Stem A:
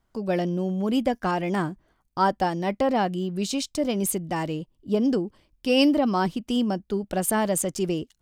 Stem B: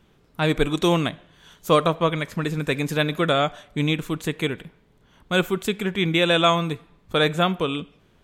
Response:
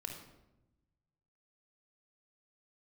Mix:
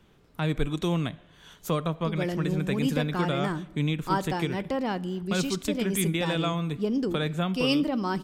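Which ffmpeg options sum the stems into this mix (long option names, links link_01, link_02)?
-filter_complex "[0:a]equalizer=frequency=670:width_type=o:width=0.77:gain=-7,adelay=1900,volume=-4.5dB,asplit=2[link_01][link_02];[link_02]volume=-12dB[link_03];[1:a]acrossover=split=210[link_04][link_05];[link_05]acompressor=threshold=-35dB:ratio=2[link_06];[link_04][link_06]amix=inputs=2:normalize=0,volume=-1dB[link_07];[2:a]atrim=start_sample=2205[link_08];[link_03][link_08]afir=irnorm=-1:irlink=0[link_09];[link_01][link_07][link_09]amix=inputs=3:normalize=0"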